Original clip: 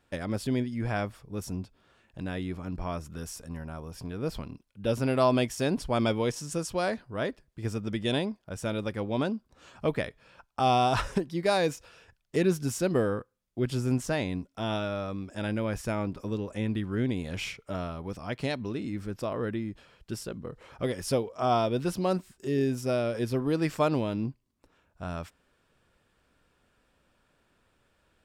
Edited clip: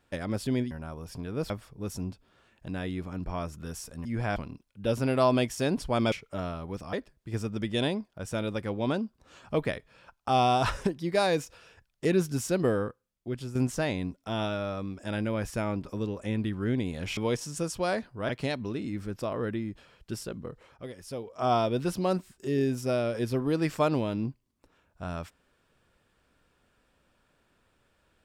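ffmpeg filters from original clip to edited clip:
ffmpeg -i in.wav -filter_complex "[0:a]asplit=12[link_01][link_02][link_03][link_04][link_05][link_06][link_07][link_08][link_09][link_10][link_11][link_12];[link_01]atrim=end=0.712[link_13];[link_02]atrim=start=3.568:end=4.362[link_14];[link_03]atrim=start=1.018:end=3.572[link_15];[link_04]atrim=start=0.708:end=1.022[link_16];[link_05]atrim=start=4.358:end=6.122[link_17];[link_06]atrim=start=17.478:end=18.292[link_18];[link_07]atrim=start=7.238:end=13.86,asetpts=PTS-STARTPTS,afade=type=out:start_time=5.902:duration=0.72:silence=0.334965[link_19];[link_08]atrim=start=13.86:end=17.482,asetpts=PTS-STARTPTS,afade=type=in:duration=0.004:curve=hsin:silence=0.334965[link_20];[link_09]atrim=start=6.118:end=7.242[link_21];[link_10]atrim=start=18.288:end=20.78,asetpts=PTS-STARTPTS,afade=type=out:start_time=2.172:duration=0.32:silence=0.281838[link_22];[link_11]atrim=start=20.78:end=21.15,asetpts=PTS-STARTPTS,volume=-11dB[link_23];[link_12]atrim=start=21.15,asetpts=PTS-STARTPTS,afade=type=in:duration=0.32:silence=0.281838[link_24];[link_13][link_14]acrossfade=duration=0.004:curve1=hsin:curve2=hsin[link_25];[link_25][link_15]acrossfade=duration=0.004:curve1=hsin:curve2=hsin[link_26];[link_26][link_16]acrossfade=duration=0.004:curve1=hsin:curve2=hsin[link_27];[link_27][link_17]acrossfade=duration=0.004:curve1=hsin:curve2=hsin[link_28];[link_28][link_18]acrossfade=duration=0.004:curve1=hsin:curve2=hsin[link_29];[link_19][link_20]concat=n=2:v=0:a=1[link_30];[link_29][link_30]acrossfade=duration=0.004:curve1=hsin:curve2=hsin[link_31];[link_31][link_21]acrossfade=duration=0.004:curve1=hsin:curve2=hsin[link_32];[link_22][link_23][link_24]concat=n=3:v=0:a=1[link_33];[link_32][link_33]acrossfade=duration=0.004:curve1=hsin:curve2=hsin" out.wav

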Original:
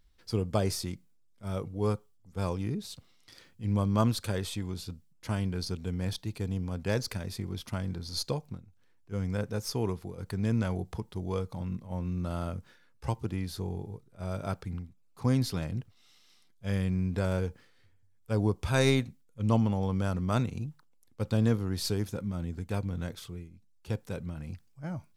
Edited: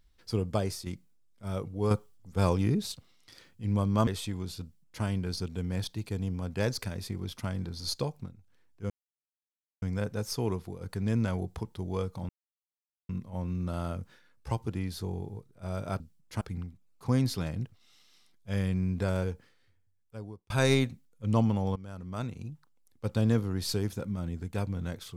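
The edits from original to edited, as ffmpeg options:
ffmpeg -i in.wav -filter_complex "[0:a]asplit=11[link_01][link_02][link_03][link_04][link_05][link_06][link_07][link_08][link_09][link_10][link_11];[link_01]atrim=end=0.86,asetpts=PTS-STARTPTS,afade=type=out:start_time=0.48:duration=0.38:silence=0.398107[link_12];[link_02]atrim=start=0.86:end=1.912,asetpts=PTS-STARTPTS,afade=type=in:duration=0.004:curve=hsin:silence=0.398107[link_13];[link_03]atrim=start=1.908:end=2.922,asetpts=PTS-STARTPTS,volume=6dB[link_14];[link_04]atrim=start=2.918:end=4.072[link_15];[link_05]atrim=start=4.358:end=9.19,asetpts=PTS-STARTPTS,afade=type=out:start_time=4.828:duration=0.004:curve=hsin,apad=pad_dur=0.92[link_16];[link_06]atrim=start=9.19:end=11.66,asetpts=PTS-STARTPTS,afade=type=in:duration=0.004:curve=hsin,afade=type=out:start_time=2.466:duration=0.004:curve=hsin,apad=pad_dur=0.8[link_17];[link_07]atrim=start=11.66:end=14.572,asetpts=PTS-STARTPTS,afade=type=in:duration=0.004:curve=hsin[link_18];[link_08]atrim=start=4.918:end=5.332[link_19];[link_09]atrim=start=14.568:end=18.66,asetpts=PTS-STARTPTS,afade=type=out:start_time=2.702:duration=1.39[link_20];[link_10]atrim=start=18.66:end=19.92,asetpts=PTS-STARTPTS,afade=type=in:duration=0.004:curve=hsin,afade=type=out:start_time=1.256:duration=0.004:curve=hsin:silence=0.133352[link_21];[link_11]atrim=start=19.92,asetpts=PTS-STARTPTS,afade=type=in:duration=1.32:silence=0.133352[link_22];[link_12][link_13]concat=n=2:v=0:a=1[link_23];[link_23][link_14]acrossfade=duration=0.004:curve1=hsin:curve2=hsin[link_24];[link_24][link_15]acrossfade=duration=0.004:curve1=hsin:curve2=hsin[link_25];[link_16][link_17][link_18]concat=n=3:v=0:a=1[link_26];[link_25][link_26]acrossfade=duration=0.004:curve1=hsin:curve2=hsin[link_27];[link_27][link_19]acrossfade=duration=0.004:curve1=hsin:curve2=hsin[link_28];[link_20][link_21][link_22]concat=n=3:v=0:a=1[link_29];[link_28][link_29]acrossfade=duration=0.004:curve1=hsin:curve2=hsin" out.wav

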